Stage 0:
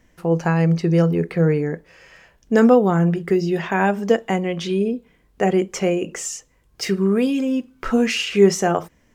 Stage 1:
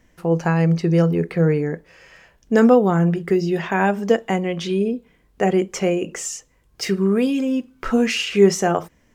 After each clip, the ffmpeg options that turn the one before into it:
ffmpeg -i in.wav -af anull out.wav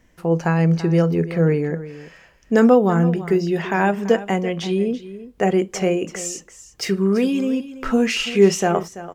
ffmpeg -i in.wav -af "aecho=1:1:335:0.178" out.wav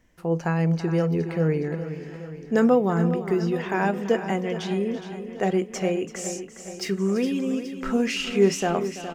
ffmpeg -i in.wav -af "aecho=1:1:415|830|1245|1660|2075|2490|2905:0.266|0.157|0.0926|0.0546|0.0322|0.019|0.0112,volume=-5.5dB" out.wav

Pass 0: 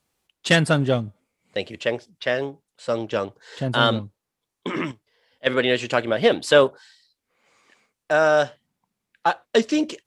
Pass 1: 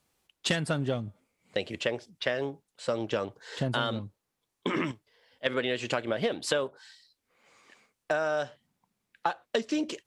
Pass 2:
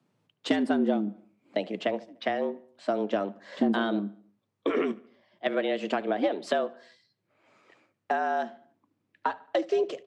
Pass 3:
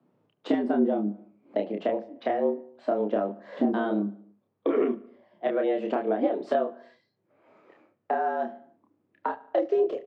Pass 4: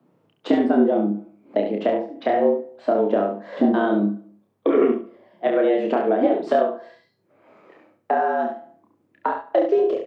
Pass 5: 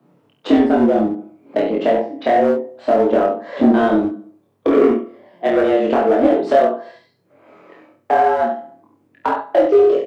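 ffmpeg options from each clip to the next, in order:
ffmpeg -i in.wav -af "acompressor=threshold=-25dB:ratio=10" out.wav
ffmpeg -i in.wav -filter_complex "[0:a]afreqshift=100,aemphasis=mode=reproduction:type=riaa,asplit=2[link_01][link_02];[link_02]adelay=74,lowpass=frequency=4600:poles=1,volume=-21.5dB,asplit=2[link_03][link_04];[link_04]adelay=74,lowpass=frequency=4600:poles=1,volume=0.51,asplit=2[link_05][link_06];[link_06]adelay=74,lowpass=frequency=4600:poles=1,volume=0.51,asplit=2[link_07][link_08];[link_08]adelay=74,lowpass=frequency=4600:poles=1,volume=0.51[link_09];[link_01][link_03][link_05][link_07][link_09]amix=inputs=5:normalize=0" out.wav
ffmpeg -i in.wav -filter_complex "[0:a]asplit=2[link_01][link_02];[link_02]acompressor=threshold=-34dB:ratio=6,volume=2.5dB[link_03];[link_01][link_03]amix=inputs=2:normalize=0,bandpass=frequency=430:width_type=q:width=0.66:csg=0,asplit=2[link_04][link_05];[link_05]adelay=29,volume=-3.5dB[link_06];[link_04][link_06]amix=inputs=2:normalize=0,volume=-1.5dB" out.wav
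ffmpeg -i in.wav -af "aecho=1:1:68|136|204:0.473|0.0757|0.0121,volume=6dB" out.wav
ffmpeg -i in.wav -filter_complex "[0:a]asplit=2[link_01][link_02];[link_02]asoftclip=type=hard:threshold=-19.5dB,volume=-4dB[link_03];[link_01][link_03]amix=inputs=2:normalize=0,asplit=2[link_04][link_05];[link_05]adelay=22,volume=-2dB[link_06];[link_04][link_06]amix=inputs=2:normalize=0" out.wav

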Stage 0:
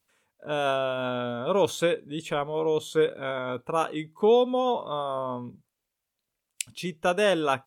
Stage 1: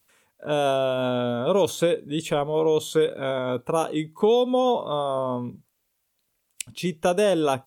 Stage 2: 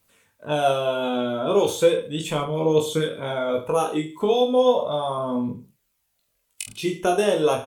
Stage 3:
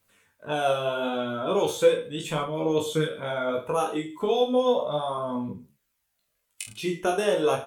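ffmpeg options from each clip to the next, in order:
ffmpeg -i in.wav -filter_complex "[0:a]highshelf=frequency=9900:gain=6.5,acrossover=split=890|3200[link_01][link_02][link_03];[link_01]acompressor=threshold=-24dB:ratio=4[link_04];[link_02]acompressor=threshold=-45dB:ratio=4[link_05];[link_03]acompressor=threshold=-40dB:ratio=4[link_06];[link_04][link_05][link_06]amix=inputs=3:normalize=0,volume=6.5dB" out.wav
ffmpeg -i in.wav -af "aphaser=in_gain=1:out_gain=1:delay=3.1:decay=0.43:speed=0.36:type=triangular,aecho=1:1:20|44|72.8|107.4|148.8:0.631|0.398|0.251|0.158|0.1,volume=-1.5dB" out.wav
ffmpeg -i in.wav -af "equalizer=frequency=1600:width_type=o:width=1:gain=4,flanger=delay=9:depth=7.6:regen=43:speed=0.75:shape=sinusoidal" out.wav

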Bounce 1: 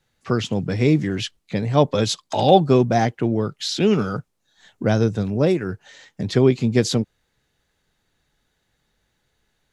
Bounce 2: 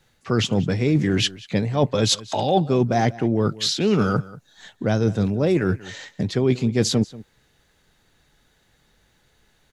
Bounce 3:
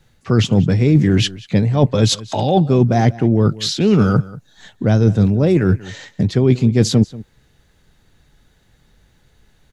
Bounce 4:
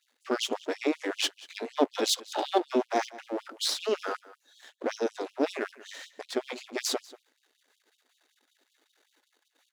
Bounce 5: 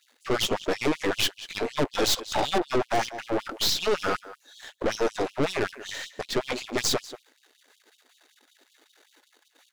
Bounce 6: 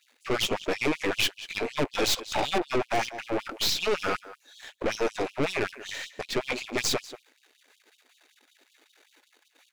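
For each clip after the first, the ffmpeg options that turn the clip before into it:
ffmpeg -i in.wav -filter_complex "[0:a]areverse,acompressor=threshold=-25dB:ratio=5,areverse,asplit=2[link_01][link_02];[link_02]adelay=186.6,volume=-19dB,highshelf=frequency=4000:gain=-4.2[link_03];[link_01][link_03]amix=inputs=2:normalize=0,volume=8dB" out.wav
ffmpeg -i in.wav -af "lowshelf=frequency=240:gain=9.5,volume=1.5dB" out.wav
ffmpeg -i in.wav -af "aeval=exprs='if(lt(val(0),0),0.251*val(0),val(0))':channel_layout=same,afftfilt=real='re*gte(b*sr/1024,220*pow(2900/220,0.5+0.5*sin(2*PI*5.3*pts/sr)))':imag='im*gte(b*sr/1024,220*pow(2900/220,0.5+0.5*sin(2*PI*5.3*pts/sr)))':win_size=1024:overlap=0.75,volume=-4dB" out.wav
ffmpeg -i in.wav -filter_complex "[0:a]asplit=2[link_01][link_02];[link_02]alimiter=limit=-17dB:level=0:latency=1:release=207,volume=-1dB[link_03];[link_01][link_03]amix=inputs=2:normalize=0,aeval=exprs='(tanh(20*val(0)+0.55)-tanh(0.55))/20':channel_layout=same,volume=6dB" out.wav
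ffmpeg -i in.wav -af "equalizer=frequency=2400:width=4.1:gain=7,volume=-2dB" out.wav

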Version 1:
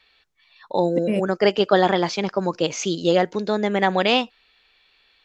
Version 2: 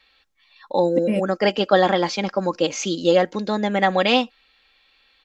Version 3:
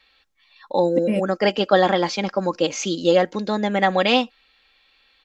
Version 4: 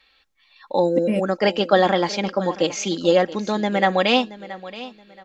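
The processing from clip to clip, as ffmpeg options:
ffmpeg -i in.wav -af "aecho=1:1:3.7:0.46" out.wav
ffmpeg -i in.wav -af anull out.wav
ffmpeg -i in.wav -af "aecho=1:1:675|1350|2025:0.15|0.0404|0.0109" out.wav

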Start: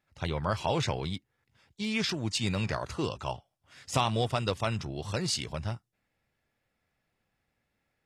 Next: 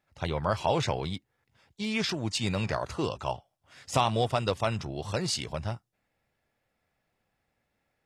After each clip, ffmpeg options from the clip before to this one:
ffmpeg -i in.wav -af "equalizer=frequency=680:width=1:gain=4" out.wav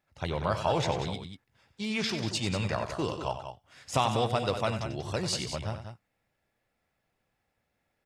ffmpeg -i in.wav -af "aecho=1:1:93.29|189.5:0.316|0.355,volume=-1.5dB" out.wav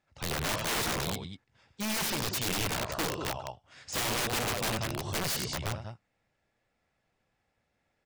ffmpeg -i in.wav -af "lowpass=frequency=8600:width=0.5412,lowpass=frequency=8600:width=1.3066,aeval=exprs='(mod(21.1*val(0)+1,2)-1)/21.1':channel_layout=same,volume=1dB" out.wav

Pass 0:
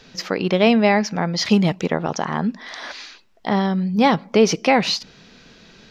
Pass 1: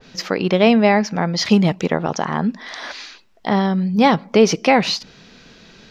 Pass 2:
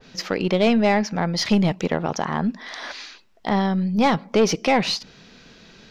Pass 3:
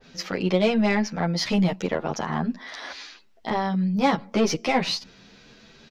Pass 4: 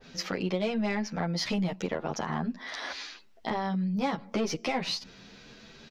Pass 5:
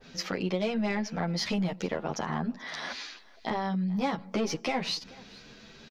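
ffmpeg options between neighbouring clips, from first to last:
ffmpeg -i in.wav -af "adynamicequalizer=threshold=0.0355:dfrequency=2000:dqfactor=0.7:tfrequency=2000:tqfactor=0.7:attack=5:release=100:ratio=0.375:range=2:mode=cutabove:tftype=highshelf,volume=2dB" out.wav
ffmpeg -i in.wav -af "aeval=exprs='(tanh(2.51*val(0)+0.25)-tanh(0.25))/2.51':channel_layout=same,volume=-2dB" out.wav
ffmpeg -i in.wav -filter_complex "[0:a]asplit=2[link_01][link_02];[link_02]adelay=9.9,afreqshift=0.86[link_03];[link_01][link_03]amix=inputs=2:normalize=1" out.wav
ffmpeg -i in.wav -af "acompressor=threshold=-30dB:ratio=2.5" out.wav
ffmpeg -i in.wav -af "aecho=1:1:434:0.075" out.wav

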